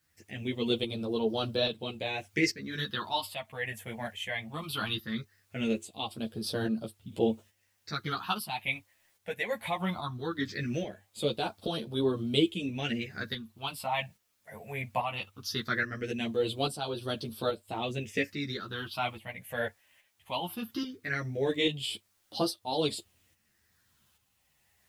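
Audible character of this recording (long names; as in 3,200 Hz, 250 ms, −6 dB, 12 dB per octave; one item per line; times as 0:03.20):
phaser sweep stages 6, 0.19 Hz, lowest notch 330–2,000 Hz
a quantiser's noise floor 12 bits, dither triangular
tremolo saw up 1.2 Hz, depth 55%
a shimmering, thickened sound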